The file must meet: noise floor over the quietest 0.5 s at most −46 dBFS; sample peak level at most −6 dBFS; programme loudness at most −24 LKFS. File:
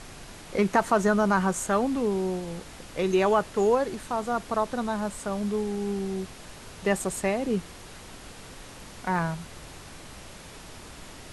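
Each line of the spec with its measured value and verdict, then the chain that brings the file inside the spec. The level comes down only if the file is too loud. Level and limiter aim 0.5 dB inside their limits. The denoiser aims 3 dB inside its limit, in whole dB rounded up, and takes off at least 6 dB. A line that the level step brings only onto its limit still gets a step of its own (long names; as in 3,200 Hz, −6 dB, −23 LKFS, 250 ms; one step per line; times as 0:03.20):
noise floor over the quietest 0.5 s −44 dBFS: out of spec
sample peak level −9.0 dBFS: in spec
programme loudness −27.0 LKFS: in spec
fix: broadband denoise 6 dB, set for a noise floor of −44 dBFS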